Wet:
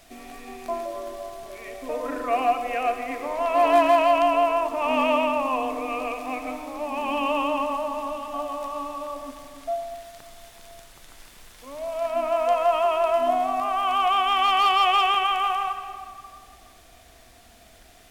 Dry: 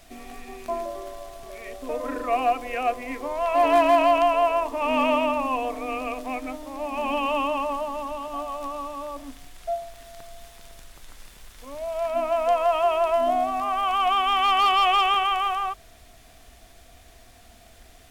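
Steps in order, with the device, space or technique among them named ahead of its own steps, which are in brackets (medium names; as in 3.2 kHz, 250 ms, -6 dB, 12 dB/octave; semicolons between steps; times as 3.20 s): compressed reverb return (on a send at -6 dB: reverberation RT60 2.0 s, pre-delay 63 ms + compression, threshold -22 dBFS, peak gain reduction 8.5 dB); on the sum: bass shelf 120 Hz -6 dB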